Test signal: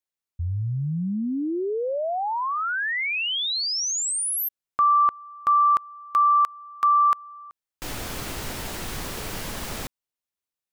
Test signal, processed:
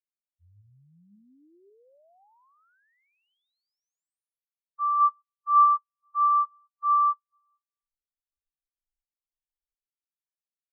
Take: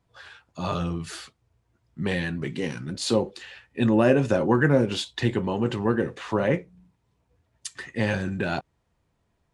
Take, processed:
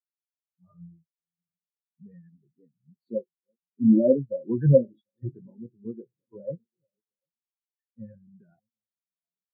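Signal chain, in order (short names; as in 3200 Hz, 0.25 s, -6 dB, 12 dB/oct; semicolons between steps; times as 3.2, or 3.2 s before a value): reverse delay 0.556 s, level -12 dB; split-band echo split 1400 Hz, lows 0.744 s, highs 0.246 s, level -15.5 dB; spectral expander 4:1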